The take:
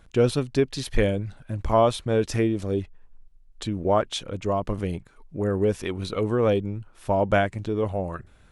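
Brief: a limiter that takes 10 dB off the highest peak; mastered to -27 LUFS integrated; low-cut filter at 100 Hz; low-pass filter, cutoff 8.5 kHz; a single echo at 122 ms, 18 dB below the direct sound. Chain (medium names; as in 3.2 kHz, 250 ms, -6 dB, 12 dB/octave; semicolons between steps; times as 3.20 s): high-pass 100 Hz; low-pass 8.5 kHz; peak limiter -16.5 dBFS; delay 122 ms -18 dB; trim +2 dB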